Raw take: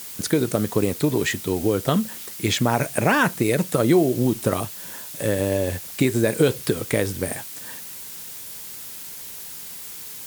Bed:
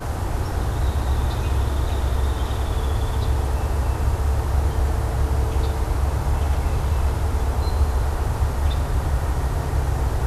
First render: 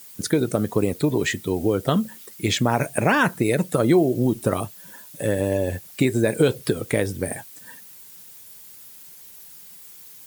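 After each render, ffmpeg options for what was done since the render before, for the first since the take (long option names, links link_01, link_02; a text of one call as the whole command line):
ffmpeg -i in.wav -af "afftdn=noise_reduction=11:noise_floor=-37" out.wav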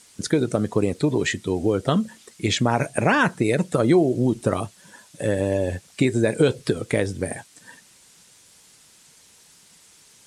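ffmpeg -i in.wav -af "lowpass=frequency=9000:width=0.5412,lowpass=frequency=9000:width=1.3066" out.wav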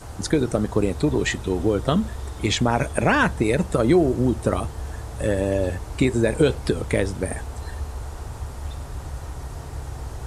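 ffmpeg -i in.wav -i bed.wav -filter_complex "[1:a]volume=-11dB[link_01];[0:a][link_01]amix=inputs=2:normalize=0" out.wav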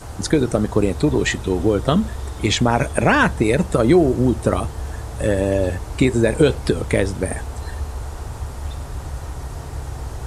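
ffmpeg -i in.wav -af "volume=3.5dB" out.wav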